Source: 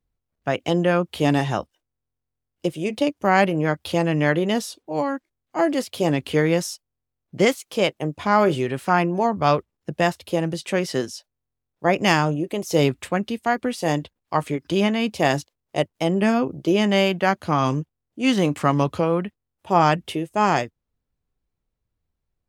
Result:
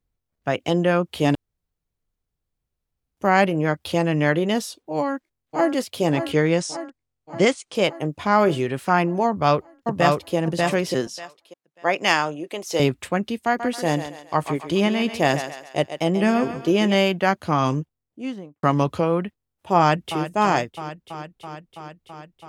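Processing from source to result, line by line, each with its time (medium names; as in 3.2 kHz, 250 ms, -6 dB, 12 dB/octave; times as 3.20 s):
1.35–3.17 s: room tone
4.95–5.73 s: echo throw 580 ms, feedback 65%, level -9 dB
6.32–7.75 s: steep low-pass 9.7 kHz 96 dB/octave
9.27–10.35 s: echo throw 590 ms, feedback 20%, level -2 dB
11.07–12.80 s: frequency weighting A
13.45–16.95 s: thinning echo 136 ms, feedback 45%, high-pass 370 Hz, level -9 dB
17.74–18.63 s: studio fade out
19.78–20.23 s: echo throw 330 ms, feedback 80%, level -11.5 dB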